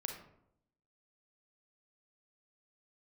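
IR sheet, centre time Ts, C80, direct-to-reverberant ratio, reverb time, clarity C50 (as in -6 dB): 27 ms, 9.0 dB, 3.0 dB, 0.75 s, 5.0 dB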